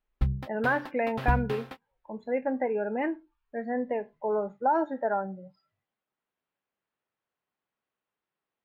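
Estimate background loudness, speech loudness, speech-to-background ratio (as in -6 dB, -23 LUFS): -34.5 LUFS, -30.0 LUFS, 4.5 dB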